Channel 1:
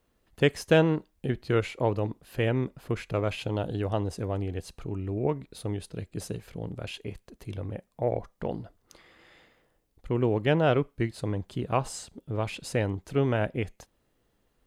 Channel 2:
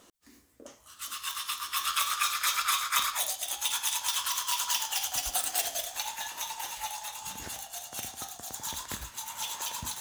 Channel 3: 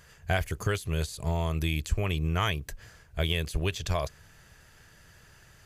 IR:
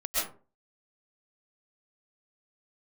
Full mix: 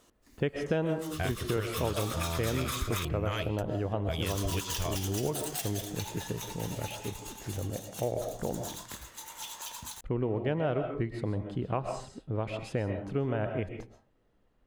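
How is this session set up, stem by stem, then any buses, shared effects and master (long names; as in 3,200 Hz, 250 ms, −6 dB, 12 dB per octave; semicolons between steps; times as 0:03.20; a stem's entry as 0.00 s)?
−1.5 dB, 0.00 s, send −13.5 dB, low-pass filter 1,900 Hz 6 dB per octave
−6.0 dB, 0.00 s, muted 0:03.05–0:04.22, no send, no processing
−4.5 dB, 0.90 s, no send, no processing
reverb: on, RT60 0.35 s, pre-delay 90 ms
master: downward compressor 3 to 1, threshold −28 dBFS, peak gain reduction 9.5 dB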